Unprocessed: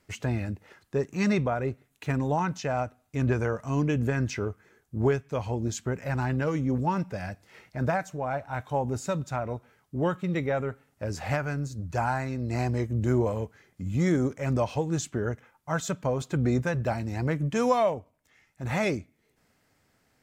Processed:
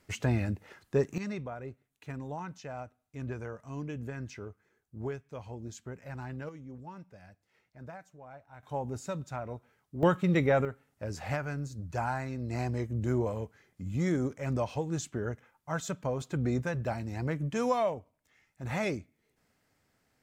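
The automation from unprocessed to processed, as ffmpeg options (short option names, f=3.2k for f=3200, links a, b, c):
-af "asetnsamples=n=441:p=0,asendcmd='1.18 volume volume -12.5dB;6.49 volume volume -19dB;8.63 volume volume -7dB;10.03 volume volume 2.5dB;10.65 volume volume -5dB',volume=0.5dB"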